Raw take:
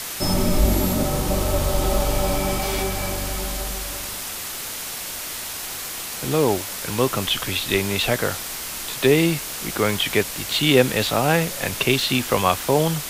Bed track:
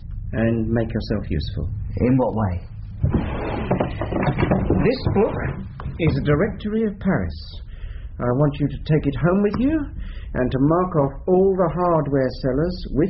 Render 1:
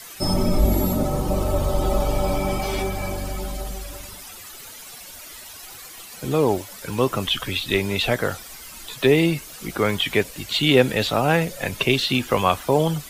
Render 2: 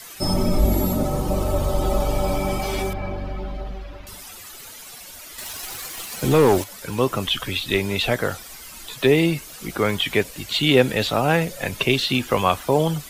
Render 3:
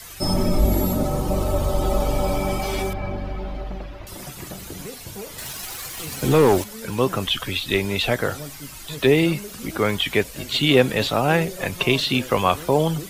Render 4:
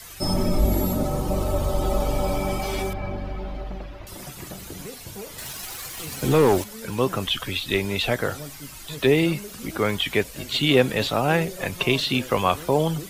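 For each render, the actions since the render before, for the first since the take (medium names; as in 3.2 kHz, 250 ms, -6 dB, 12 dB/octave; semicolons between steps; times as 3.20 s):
noise reduction 13 dB, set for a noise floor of -31 dBFS
2.93–4.07 s: distance through air 310 m; 5.38–6.64 s: waveshaping leveller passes 2
add bed track -18.5 dB
trim -2 dB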